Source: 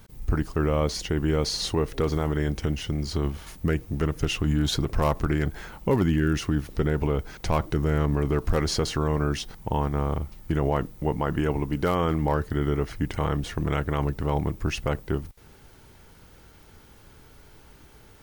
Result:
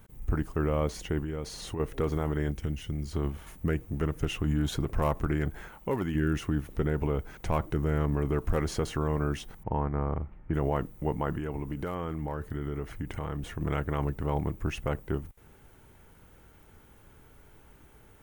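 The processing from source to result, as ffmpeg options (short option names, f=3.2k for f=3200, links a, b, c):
-filter_complex "[0:a]asettb=1/sr,asplit=3[a][b][c];[a]atrim=end=1.194[d];[b]atrim=start=1.19:end=1.8,asetpts=PTS-STARTPTS,afade=t=in:d=0.004:c=qsin,afade=t=out:st=0.606:d=0.004:c=qsin,acompressor=threshold=-26dB:ratio=6:attack=3.2:release=140:knee=1:detection=peak[e];[c]atrim=start=1.796[f];[d][e]acrossfade=d=0.004:c1=hsin:c2=qsin[g];[g][f]acrossfade=d=0.004:c1=qsin:c2=hsin,asettb=1/sr,asplit=3[h][i][j];[h]atrim=end=2.514[k];[i]atrim=start=2.51:end=3.13,asetpts=PTS-STARTPTS,afade=t=in:d=0.004:c=qsin,afade=t=out:st=0.616:d=0.004:c=qsin,equalizer=f=790:t=o:w=2.9:g=-7[l];[j]atrim=start=3.126[m];[k][l]acrossfade=d=0.004:c1=hsin:c2=qsin[n];[n][m]acrossfade=d=0.004:c1=qsin:c2=hsin,asettb=1/sr,asplit=3[o][p][q];[o]atrim=end=5.684[r];[p]atrim=start=5.68:end=6.15,asetpts=PTS-STARTPTS,afade=t=in:d=0.004:c=qsin,afade=t=out:st=0.466:d=0.004:c=qsin,lowshelf=f=340:g=-7.5[s];[q]atrim=start=6.146[t];[r][s]acrossfade=d=0.004:c1=hsin:c2=qsin[u];[u][t]acrossfade=d=0.004:c1=qsin:c2=hsin,asettb=1/sr,asplit=3[v][w][x];[v]atrim=end=9.634[y];[w]atrim=start=9.63:end=10.54,asetpts=PTS-STARTPTS,afade=t=in:d=0.004:c=qsin,afade=t=out:st=0.906:d=0.004:c=qsin,lowpass=f=2.3k:w=0.5412,lowpass=f=2.3k:w=1.3066[z];[x]atrim=start=10.536[aa];[y][z]acrossfade=d=0.004:c1=hsin:c2=qsin[ab];[ab][aa]acrossfade=d=0.004:c1=qsin:c2=hsin,asettb=1/sr,asplit=3[ac][ad][ae];[ac]atrim=end=11.354[af];[ad]atrim=start=11.35:end=13.61,asetpts=PTS-STARTPTS,afade=t=in:d=0.004:c=qsin,afade=t=out:st=2.256:d=0.004:c=qsin,acompressor=threshold=-25dB:ratio=6:attack=3.2:release=140:knee=1:detection=peak[ag];[ae]atrim=start=13.606[ah];[af][ag]acrossfade=d=0.004:c1=hsin:c2=qsin[ai];[ai][ah]acrossfade=d=0.004:c1=qsin:c2=hsin,equalizer=f=4.7k:w=1.5:g=-10.5,volume=-4dB"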